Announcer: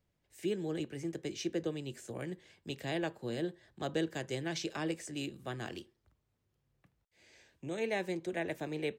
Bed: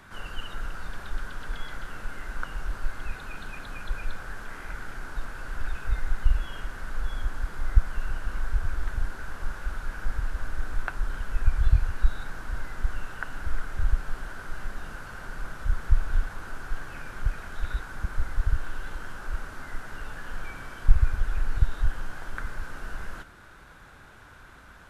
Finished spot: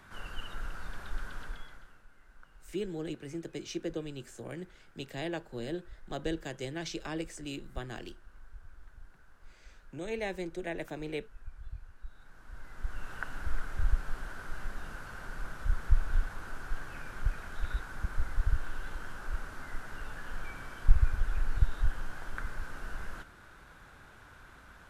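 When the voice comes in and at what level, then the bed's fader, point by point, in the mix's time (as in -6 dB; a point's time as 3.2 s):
2.30 s, -1.0 dB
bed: 1.41 s -5 dB
2.06 s -23.5 dB
12.05 s -23.5 dB
13.14 s -4 dB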